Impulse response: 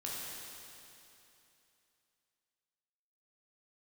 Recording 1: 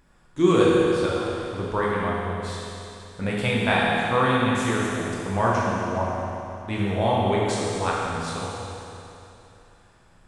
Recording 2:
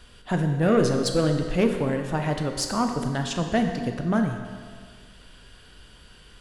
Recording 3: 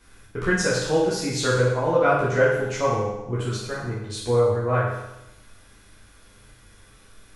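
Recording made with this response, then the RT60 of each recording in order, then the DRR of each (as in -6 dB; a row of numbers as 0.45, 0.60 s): 1; 2.9, 1.8, 0.95 s; -5.5, 4.0, -8.0 dB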